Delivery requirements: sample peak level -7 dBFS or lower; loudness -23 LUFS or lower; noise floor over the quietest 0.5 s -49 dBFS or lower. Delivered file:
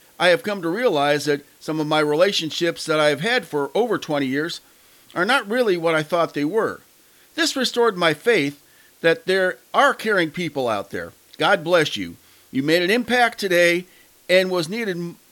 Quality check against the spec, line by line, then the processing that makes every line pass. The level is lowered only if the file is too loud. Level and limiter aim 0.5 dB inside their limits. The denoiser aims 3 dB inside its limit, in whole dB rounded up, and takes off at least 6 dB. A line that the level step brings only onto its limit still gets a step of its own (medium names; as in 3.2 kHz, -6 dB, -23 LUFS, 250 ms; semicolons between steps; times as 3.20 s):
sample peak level -4.5 dBFS: fail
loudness -20.0 LUFS: fail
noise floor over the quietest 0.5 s -53 dBFS: pass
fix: trim -3.5 dB